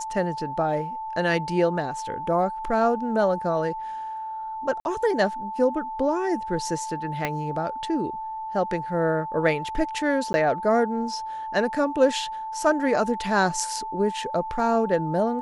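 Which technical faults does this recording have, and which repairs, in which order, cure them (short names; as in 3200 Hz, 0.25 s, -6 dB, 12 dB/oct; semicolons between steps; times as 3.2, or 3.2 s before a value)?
tone 880 Hz -30 dBFS
4.8–4.85 gap 51 ms
7.25 pop -11 dBFS
10.33–10.34 gap 10 ms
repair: de-click; notch 880 Hz, Q 30; interpolate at 4.8, 51 ms; interpolate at 10.33, 10 ms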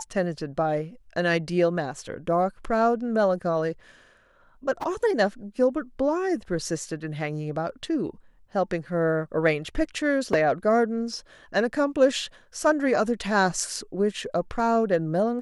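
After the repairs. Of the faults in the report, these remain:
7.25 pop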